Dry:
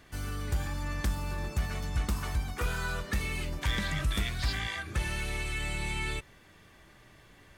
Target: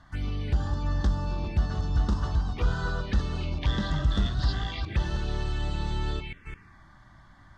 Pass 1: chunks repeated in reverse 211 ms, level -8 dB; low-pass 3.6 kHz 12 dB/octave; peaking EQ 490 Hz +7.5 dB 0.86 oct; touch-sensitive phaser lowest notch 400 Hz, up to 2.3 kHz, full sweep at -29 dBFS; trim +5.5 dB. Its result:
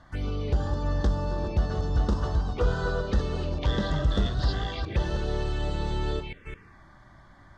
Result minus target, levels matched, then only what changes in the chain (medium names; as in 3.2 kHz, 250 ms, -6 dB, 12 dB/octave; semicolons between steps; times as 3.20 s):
500 Hz band +7.0 dB
change: peaking EQ 490 Hz -3 dB 0.86 oct